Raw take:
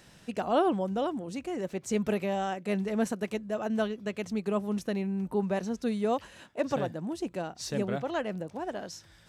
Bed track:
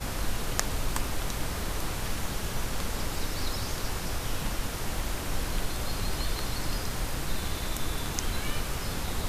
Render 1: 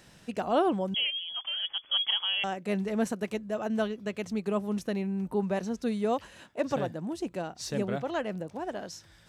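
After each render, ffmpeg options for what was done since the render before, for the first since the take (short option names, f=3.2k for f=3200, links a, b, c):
-filter_complex "[0:a]asettb=1/sr,asplit=3[a][b][c];[a]atrim=end=0.944[d];[b]atrim=start=0.94:end=2.44,asetpts=PTS-STARTPTS,afade=t=in:d=0.004:c=qsin,afade=t=out:st=1.496:d=0.004:c=qsin,lowpass=f=3k:t=q:w=0.5098,lowpass=f=3k:t=q:w=0.6013,lowpass=f=3k:t=q:w=0.9,lowpass=f=3k:t=q:w=2.563,afreqshift=-3500[e];[c]atrim=start=2.436[f];[d][e]acrossfade=d=0.004:c1=hsin:c2=qsin[g];[g][f]acrossfade=d=0.004:c1=qsin:c2=hsin"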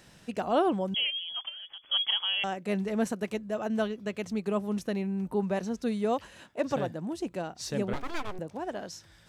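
-filter_complex "[0:a]asplit=3[a][b][c];[a]afade=t=out:st=1.48:d=0.02[d];[b]acompressor=threshold=-40dB:ratio=12:attack=3.2:release=140:knee=1:detection=peak,afade=t=in:st=1.48:d=0.02,afade=t=out:st=1.9:d=0.02[e];[c]afade=t=in:st=1.9:d=0.02[f];[d][e][f]amix=inputs=3:normalize=0,asettb=1/sr,asplit=3[g][h][i];[g]atrim=end=7.934[j];[h]atrim=start=7.93:end=8.39,asetpts=PTS-STARTPTS,afade=t=in:d=0.004:c=qsin,afade=t=out:st=0.456:d=0.004:c=qsin,aeval=exprs='abs(val(0))':c=same[k];[i]atrim=start=8.386[l];[j][k]acrossfade=d=0.004:c1=hsin:c2=qsin[m];[m][l]acrossfade=d=0.004:c1=qsin:c2=hsin"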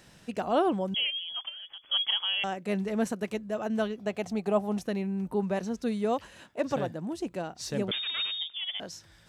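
-filter_complex "[0:a]asettb=1/sr,asplit=3[a][b][c];[a]atrim=end=3.994[d];[b]atrim=start=3.99:end=4.83,asetpts=PTS-STARTPTS,afade=t=in:d=0.004:c=qsin,afade=t=out:st=0.836:d=0.004:c=qsin,equalizer=f=740:t=o:w=0.42:g=14.5[e];[c]atrim=start=4.826[f];[d][e]acrossfade=d=0.004:c1=hsin:c2=qsin[g];[g][f]acrossfade=d=0.004:c1=qsin:c2=hsin,asettb=1/sr,asplit=3[h][i][j];[h]atrim=end=7.914[k];[i]atrim=start=7.91:end=8.8,asetpts=PTS-STARTPTS,afade=t=in:d=0.004:c=qsin,afade=t=out:st=0.886:d=0.004:c=qsin,lowpass=f=3.1k:t=q:w=0.5098,lowpass=f=3.1k:t=q:w=0.6013,lowpass=f=3.1k:t=q:w=0.9,lowpass=f=3.1k:t=q:w=2.563,afreqshift=-3700[l];[j]atrim=start=8.796[m];[k][l]acrossfade=d=0.004:c1=hsin:c2=qsin[n];[n][m]acrossfade=d=0.004:c1=qsin:c2=hsin"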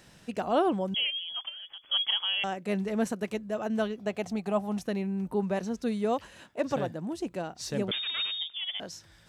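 -filter_complex "[0:a]asettb=1/sr,asplit=3[a][b][c];[a]atrim=end=4.364[d];[b]atrim=start=4.36:end=4.88,asetpts=PTS-STARTPTS,afade=t=in:d=0.004:c=qsin,afade=t=out:st=0.516:d=0.004:c=qsin,equalizer=f=430:w=1.5:g=-5.5[e];[c]atrim=start=4.876[f];[d][e]acrossfade=d=0.004:c1=hsin:c2=qsin[g];[g][f]acrossfade=d=0.004:c1=qsin:c2=hsin"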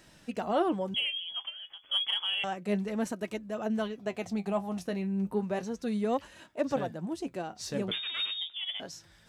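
-filter_complex "[0:a]flanger=delay=3.1:depth=8.2:regen=56:speed=0.31:shape=sinusoidal,asplit=2[a][b];[b]asoftclip=type=tanh:threshold=-27.5dB,volume=-9dB[c];[a][c]amix=inputs=2:normalize=0"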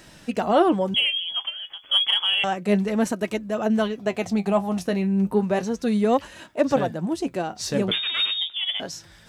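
-af "volume=9.5dB"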